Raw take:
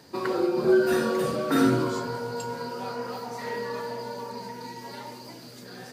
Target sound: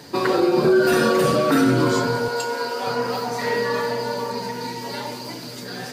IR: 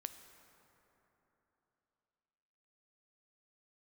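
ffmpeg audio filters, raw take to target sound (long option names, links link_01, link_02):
-filter_complex "[0:a]asettb=1/sr,asplit=3[link_01][link_02][link_03];[link_01]atrim=end=2.284[link_04];[link_02]atrim=start=2.28:end=2.87,asetpts=PTS-STARTPTS,afade=type=in:duration=0.004:curve=qsin,afade=type=out:start_time=0.586:duration=0.004:curve=qsin,highpass=410[link_05];[link_03]atrim=start=2.866[link_06];[link_04][link_05]acrossfade=duration=0.004:curve1=hsin:curve2=qsin[link_07];[link_07][link_06]acrossfade=duration=0.004:curve1=qsin:curve2=hsin,asplit=2[link_08][link_09];[link_09]equalizer=frequency=3500:width=0.39:gain=12.5[link_10];[1:a]atrim=start_sample=2205,adelay=7[link_11];[link_10][link_11]afir=irnorm=-1:irlink=0,volume=-10.5dB[link_12];[link_08][link_12]amix=inputs=2:normalize=0,alimiter=level_in=17.5dB:limit=-1dB:release=50:level=0:latency=1,volume=-8dB"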